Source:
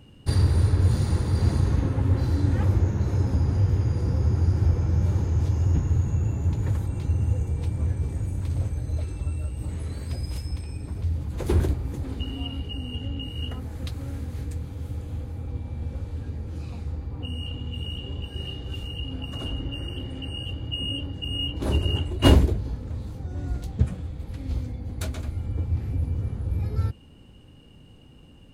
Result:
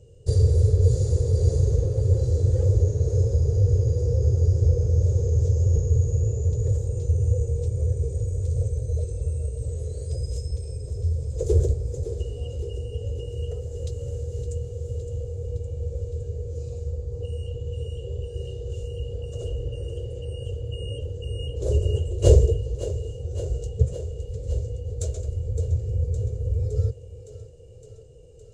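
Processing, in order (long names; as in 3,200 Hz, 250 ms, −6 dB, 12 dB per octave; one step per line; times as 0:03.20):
drawn EQ curve 120 Hz 0 dB, 260 Hz −24 dB, 460 Hz +11 dB, 880 Hz −21 dB, 2,100 Hz −21 dB, 4,500 Hz −8 dB, 7,300 Hz +7 dB, 11,000 Hz −17 dB
on a send: feedback echo with a high-pass in the loop 563 ms, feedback 72%, high-pass 170 Hz, level −12 dB
on the sum: level +2 dB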